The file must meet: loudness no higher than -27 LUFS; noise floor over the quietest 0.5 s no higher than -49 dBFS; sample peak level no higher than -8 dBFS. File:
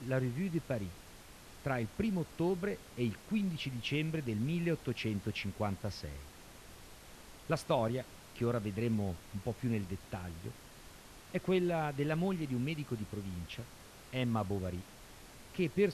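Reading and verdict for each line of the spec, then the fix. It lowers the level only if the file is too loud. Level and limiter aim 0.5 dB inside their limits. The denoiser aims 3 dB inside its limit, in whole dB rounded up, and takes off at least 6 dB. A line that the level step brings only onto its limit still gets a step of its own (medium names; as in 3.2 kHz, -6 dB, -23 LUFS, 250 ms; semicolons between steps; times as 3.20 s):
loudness -37.0 LUFS: pass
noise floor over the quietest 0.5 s -54 dBFS: pass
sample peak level -18.0 dBFS: pass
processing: none needed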